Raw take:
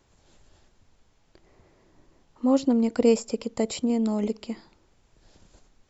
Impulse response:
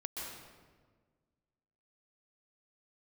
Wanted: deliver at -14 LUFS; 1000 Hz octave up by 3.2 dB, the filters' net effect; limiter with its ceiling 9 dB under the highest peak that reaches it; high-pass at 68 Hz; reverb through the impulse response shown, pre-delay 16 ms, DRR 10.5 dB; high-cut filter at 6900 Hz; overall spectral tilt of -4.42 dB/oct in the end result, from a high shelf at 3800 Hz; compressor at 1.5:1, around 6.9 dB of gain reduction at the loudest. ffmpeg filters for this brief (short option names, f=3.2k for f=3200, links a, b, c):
-filter_complex "[0:a]highpass=68,lowpass=6.9k,equalizer=f=1k:t=o:g=4,highshelf=f=3.8k:g=5.5,acompressor=threshold=-34dB:ratio=1.5,alimiter=level_in=0.5dB:limit=-24dB:level=0:latency=1,volume=-0.5dB,asplit=2[a][b];[1:a]atrim=start_sample=2205,adelay=16[c];[b][c]afir=irnorm=-1:irlink=0,volume=-11dB[d];[a][d]amix=inputs=2:normalize=0,volume=20dB"